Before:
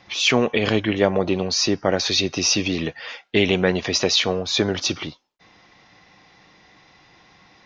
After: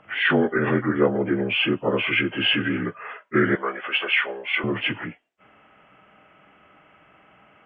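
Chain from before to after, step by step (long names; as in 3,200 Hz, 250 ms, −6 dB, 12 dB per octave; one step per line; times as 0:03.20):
partials spread apart or drawn together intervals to 79%
0:03.55–0:04.64: high-pass filter 710 Hz 12 dB per octave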